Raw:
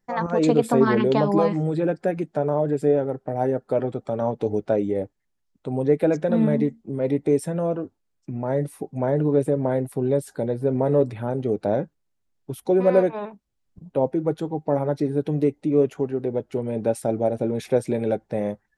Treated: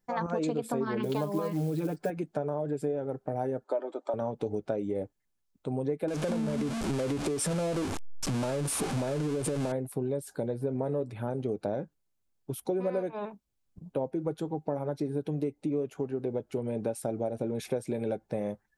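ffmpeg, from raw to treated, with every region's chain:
-filter_complex "[0:a]asettb=1/sr,asplit=3[s0][s1][s2];[s0]atrim=end=1.034[s3];[s1]atrim=start=1.03:end=2.1,asetpts=PTS-STARTPTS,afade=t=in:d=0.004:c=qsin,afade=t=out:st=1.066:d=0.004:c=qsin,aecho=1:1:6.7:0.77,atrim=end_sample=47187,acrusher=bits=7:mode=log:mix=0:aa=0.000001[s4];[s2]atrim=start=2.096[s5];[s3][s4]acrossfade=d=0.004:c1=hsin:c2=qsin[s6];[s6][s5]acrossfade=d=0.004:c1=qsin:c2=hsin,asettb=1/sr,asplit=3[s7][s8][s9];[s7]atrim=end=3.644[s10];[s8]atrim=start=3.64:end=4.14,asetpts=PTS-STARTPTS,afade=t=in:d=0.004:c=qsin,afade=t=out:st=0.496:d=0.004:c=qsin,highpass=f=340:w=0.5412,highpass=f=340:w=1.3066,equalizer=f=700:t=q:w=4:g=4,equalizer=f=1000:t=q:w=4:g=6,equalizer=f=2600:t=q:w=4:g=-4,equalizer=f=5200:t=q:w=4:g=-4,lowpass=f=7900:w=0.5412,lowpass=f=7900:w=1.3066,aecho=1:1:3.3:0.48,atrim=end_sample=22050[s11];[s9]atrim=start=4.136[s12];[s10][s11]acrossfade=d=0.004:c1=hsin:c2=qsin[s13];[s13][s12]acrossfade=d=0.004:c1=qsin:c2=hsin,asettb=1/sr,asplit=3[s14][s15][s16];[s14]atrim=end=6.084[s17];[s15]atrim=start=6.08:end=9.72,asetpts=PTS-STARTPTS,afade=t=in:d=0.004:c=qsin,afade=t=out:st=3.636:d=0.004:c=qsin,aeval=exprs='val(0)+0.5*0.075*sgn(val(0))':c=same,acompressor=threshold=0.112:ratio=6:attack=3.2:release=140:knee=1:detection=peak,lowpass=f=10000:w=0.5412,lowpass=f=10000:w=1.3066[s18];[s16]atrim=start=9.716[s19];[s17][s18]acrossfade=d=0.004:c1=hsin:c2=qsin[s20];[s20][s19]acrossfade=d=0.004:c1=qsin:c2=hsin,highshelf=f=7800:g=6.5,bandreject=f=1900:w=14,acompressor=threshold=0.0631:ratio=6,volume=0.668"

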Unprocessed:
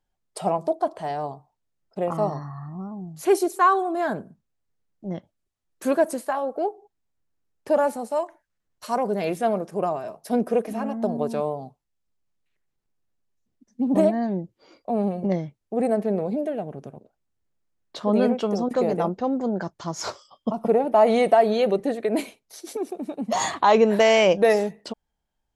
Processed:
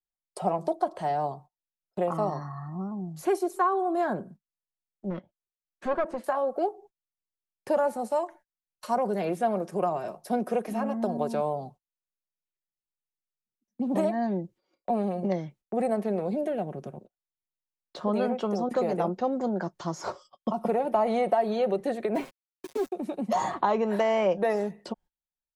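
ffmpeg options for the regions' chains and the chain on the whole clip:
-filter_complex "[0:a]asettb=1/sr,asplit=3[s0][s1][s2];[s0]atrim=end=5.104[s3];[s1]atrim=start=5.1:end=6.24,asetpts=PTS-STARTPTS,afade=t=in:d=0.004:c=qsin,afade=t=out:st=1.136:d=0.004:c=qsin,aeval=exprs='clip(val(0),-1,0.0211)':c=same,lowpass=2900[s4];[s2]atrim=start=6.236[s5];[s3][s4]acrossfade=d=0.004:c1=hsin:c2=qsin[s6];[s6][s5]acrossfade=d=0.004:c1=qsin:c2=hsin,asettb=1/sr,asplit=3[s7][s8][s9];[s7]atrim=end=22.154[s10];[s8]atrim=start=22.15:end=22.92,asetpts=PTS-STARTPTS,afade=t=in:d=0.004:c=qsin,afade=t=out:st=0.766:d=0.004:c=qsin,acrossover=split=3100[s11][s12];[s12]acompressor=threshold=0.002:ratio=4:attack=1:release=60[s13];[s11][s13]amix=inputs=2:normalize=0,aeval=exprs='val(0)*gte(abs(val(0)),0.0133)':c=same,aecho=1:1:7.4:0.82,atrim=end_sample=33957[s14];[s9]atrim=start=22.916[s15];[s10][s14]acrossfade=d=0.004:c1=hsin:c2=qsin[s16];[s16][s15]acrossfade=d=0.004:c1=qsin:c2=hsin,agate=range=0.0631:threshold=0.00398:ratio=16:detection=peak,aecho=1:1:5.5:0.34,acrossover=split=180|690|1400[s17][s18][s19][s20];[s17]acompressor=threshold=0.00708:ratio=4[s21];[s18]acompressor=threshold=0.0398:ratio=4[s22];[s19]acompressor=threshold=0.0447:ratio=4[s23];[s20]acompressor=threshold=0.00501:ratio=4[s24];[s21][s22][s23][s24]amix=inputs=4:normalize=0"

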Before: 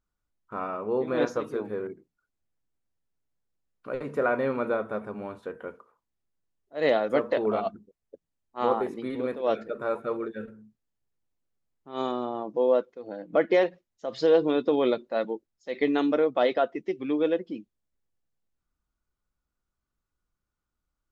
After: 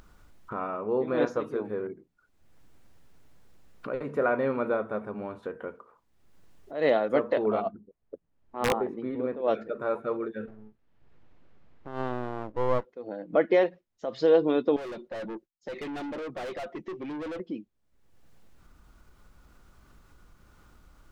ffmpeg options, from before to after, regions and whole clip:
-filter_complex "[0:a]asettb=1/sr,asplit=3[s0][s1][s2];[s0]atrim=end=7.624[s3];[s1]atrim=start=7.62:end=9.48,asetpts=PTS-STARTPTS,afade=t=in:d=0.004:c=qsin,afade=t=out:st=1.856:d=0.004:c=qsin,lowpass=f=1400:p=1,aeval=exprs='(mod(5.62*val(0)+1,2)-1)/5.62':c=same[s4];[s2]atrim=start=9.476[s5];[s3][s4]acrossfade=d=0.004:c1=hsin:c2=qsin[s6];[s6][s5]acrossfade=d=0.004:c1=qsin:c2=hsin,asettb=1/sr,asplit=3[s7][s8][s9];[s7]atrim=end=10.484[s10];[s8]atrim=start=10.48:end=12.85,asetpts=PTS-STARTPTS,afade=t=in:d=0.004:c=qsin,afade=t=out:st=2.366:d=0.004:c=qsin,lowpass=2900,aeval=exprs='max(val(0),0)':c=same[s11];[s9]atrim=start=12.846[s12];[s10][s11]acrossfade=d=0.004:c1=hsin:c2=qsin[s13];[s13][s12]acrossfade=d=0.004:c1=qsin:c2=hsin,asettb=1/sr,asplit=3[s14][s15][s16];[s14]atrim=end=14.764[s17];[s15]atrim=start=14.76:end=17.4,asetpts=PTS-STARTPTS,afade=t=in:d=0.004:c=qsin,afade=t=out:st=2.636:d=0.004:c=qsin,agate=range=0.0224:threshold=0.00141:ratio=3:release=100:detection=peak,aecho=1:1:5.6:0.4,atrim=end_sample=116424,aeval=exprs='(tanh(63.1*val(0)+0.1)-tanh(0.1))/63.1':c=same[s18];[s16]atrim=start=17.396[s19];[s17][s18]acrossfade=d=0.004:c1=hsin:c2=qsin[s20];[s20][s19]acrossfade=d=0.004:c1=qsin:c2=hsin,highshelf=f=4000:g=-8.5,acompressor=mode=upward:threshold=0.0251:ratio=2.5"

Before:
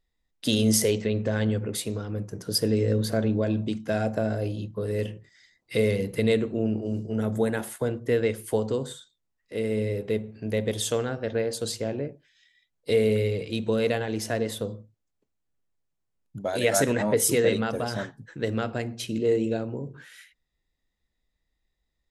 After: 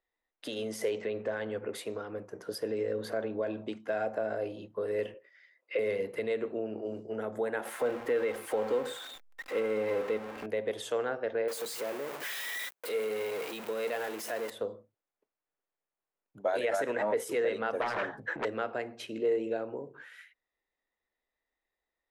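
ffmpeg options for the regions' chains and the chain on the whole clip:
-filter_complex "[0:a]asettb=1/sr,asplit=3[s0][s1][s2];[s0]atrim=end=5.144[s3];[s1]atrim=start=5.14:end=5.79,asetpts=PTS-STARTPTS,afade=t=in:d=0.004:c=qsin,afade=t=out:st=0.646:d=0.004:c=qsin,highpass=380,equalizer=f=540:t=q:w=4:g=9,equalizer=f=790:t=q:w=4:g=-8,equalizer=f=2600:t=q:w=4:g=6,equalizer=f=3900:t=q:w=4:g=-5,lowpass=f=5400:w=0.5412,lowpass=f=5400:w=1.3066,acrossover=split=3800[s4][s5];[s5]acompressor=threshold=0.00224:ratio=4:attack=1:release=60[s6];[s4][s6]amix=inputs=2:normalize=0[s7];[s2]atrim=start=5.786[s8];[s3][s7]acrossfade=d=0.004:c1=hsin:c2=qsin[s9];[s9][s8]acrossfade=d=0.004:c1=qsin:c2=hsin,asettb=1/sr,asplit=3[s10][s11][s12];[s10]atrim=end=7.654[s13];[s11]atrim=start=7.65:end=10.46,asetpts=PTS-STARTPTS,afade=t=in:d=0.004:c=qsin,afade=t=out:st=2.806:d=0.004:c=qsin,aeval=exprs='val(0)+0.5*0.0251*sgn(val(0))':c=same,aecho=1:1:3.8:0.35,atrim=end_sample=123921[s14];[s12]atrim=start=10.456[s15];[s13][s14]acrossfade=d=0.004:c1=hsin:c2=qsin[s16];[s16][s15]acrossfade=d=0.004:c1=qsin:c2=hsin,asettb=1/sr,asplit=3[s17][s18][s19];[s17]atrim=end=11.484[s20];[s18]atrim=start=11.48:end=14.5,asetpts=PTS-STARTPTS,afade=t=in:d=0.004:c=qsin,afade=t=out:st=3.016:d=0.004:c=qsin,aeval=exprs='val(0)+0.5*0.0398*sgn(val(0))':c=same,highpass=f=130:w=0.5412,highpass=f=130:w=1.3066,aemphasis=mode=production:type=75kf[s21];[s19]atrim=start=14.496[s22];[s20][s21]acrossfade=d=0.004:c1=hsin:c2=qsin[s23];[s23][s22]acrossfade=d=0.004:c1=qsin:c2=hsin,asettb=1/sr,asplit=3[s24][s25][s26];[s24]atrim=end=17.814[s27];[s25]atrim=start=17.81:end=18.45,asetpts=PTS-STARTPTS,afade=t=in:d=0.004:c=qsin,afade=t=out:st=0.636:d=0.004:c=qsin,highshelf=f=4400:g=-10.5,aeval=exprs='0.2*sin(PI/2*5.62*val(0)/0.2)':c=same,acompressor=threshold=0.0398:ratio=8:attack=3.2:release=140:knee=1:detection=peak[s28];[s26]atrim=start=18.446[s29];[s27][s28]acrossfade=d=0.004:c1=hsin:c2=qsin[s30];[s30][s29]acrossfade=d=0.004:c1=qsin:c2=hsin,alimiter=limit=0.119:level=0:latency=1:release=115,acrossover=split=360 2500:gain=0.0794 1 0.178[s31][s32][s33];[s31][s32][s33]amix=inputs=3:normalize=0,volume=1.12"

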